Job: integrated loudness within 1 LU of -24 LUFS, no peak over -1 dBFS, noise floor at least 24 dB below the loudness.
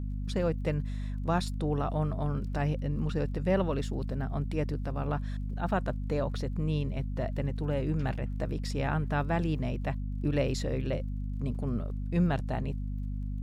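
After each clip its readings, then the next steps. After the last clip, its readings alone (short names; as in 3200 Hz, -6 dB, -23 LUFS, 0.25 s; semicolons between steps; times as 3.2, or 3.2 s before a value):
ticks 28/s; hum 50 Hz; harmonics up to 250 Hz; hum level -31 dBFS; loudness -32.0 LUFS; peak -14.5 dBFS; loudness target -24.0 LUFS
-> de-click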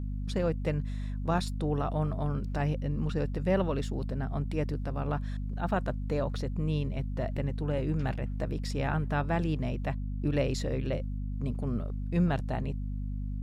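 ticks 0.22/s; hum 50 Hz; harmonics up to 250 Hz; hum level -31 dBFS
-> notches 50/100/150/200/250 Hz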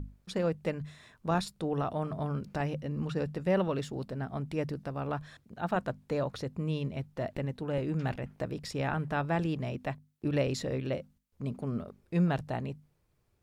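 hum none; loudness -34.0 LUFS; peak -16.5 dBFS; loudness target -24.0 LUFS
-> gain +10 dB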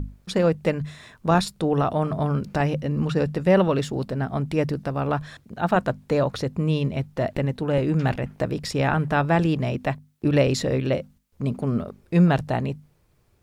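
loudness -24.0 LUFS; peak -6.5 dBFS; noise floor -62 dBFS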